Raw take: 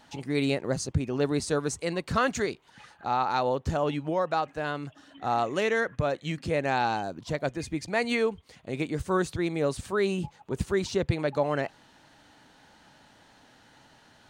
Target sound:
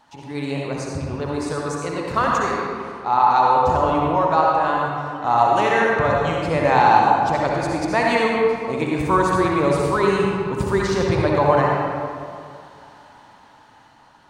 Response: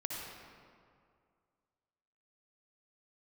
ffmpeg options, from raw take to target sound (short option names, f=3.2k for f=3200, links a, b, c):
-filter_complex "[0:a]equalizer=f=1k:w=2:g=11,dynaudnorm=f=610:g=7:m=10dB[a];[1:a]atrim=start_sample=2205[b];[a][b]afir=irnorm=-1:irlink=0,volume=-1.5dB"